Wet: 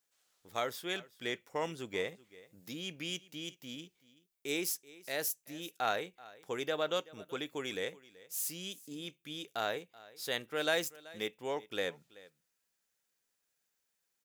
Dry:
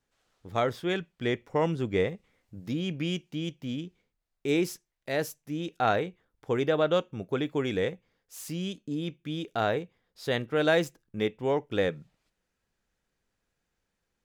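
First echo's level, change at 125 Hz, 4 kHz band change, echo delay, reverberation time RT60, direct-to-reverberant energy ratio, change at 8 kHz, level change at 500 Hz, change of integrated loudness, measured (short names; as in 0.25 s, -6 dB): -20.5 dB, -17.5 dB, -1.5 dB, 0.381 s, none, none, +4.5 dB, -9.5 dB, -7.5 dB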